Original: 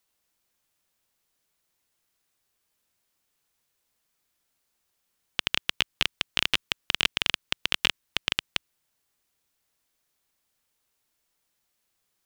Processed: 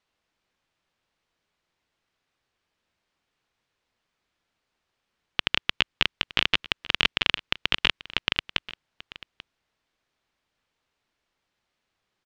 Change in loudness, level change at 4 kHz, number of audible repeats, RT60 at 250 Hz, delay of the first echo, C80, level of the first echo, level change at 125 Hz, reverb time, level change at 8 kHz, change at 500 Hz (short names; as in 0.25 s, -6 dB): +2.0 dB, +1.5 dB, 1, none, 0.838 s, none, -18.5 dB, +3.5 dB, none, -8.0 dB, +3.5 dB